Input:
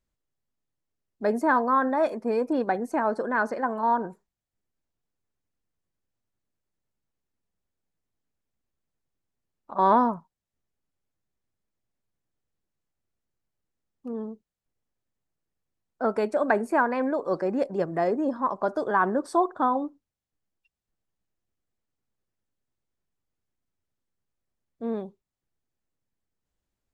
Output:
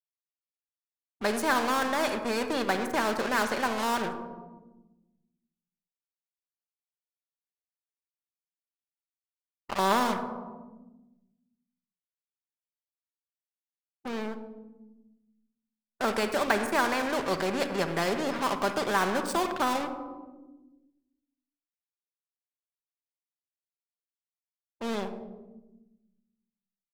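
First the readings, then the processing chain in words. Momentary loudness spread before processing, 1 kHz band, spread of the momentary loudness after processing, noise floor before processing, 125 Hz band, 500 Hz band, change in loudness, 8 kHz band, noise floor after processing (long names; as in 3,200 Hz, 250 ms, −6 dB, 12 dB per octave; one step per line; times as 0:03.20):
13 LU, −3.5 dB, 16 LU, below −85 dBFS, +0.5 dB, −3.5 dB, −3.0 dB, can't be measured, below −85 dBFS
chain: dead-zone distortion −44.5 dBFS
rectangular room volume 3,700 cubic metres, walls furnished, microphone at 1.2 metres
every bin compressed towards the loudest bin 2 to 1
level −4 dB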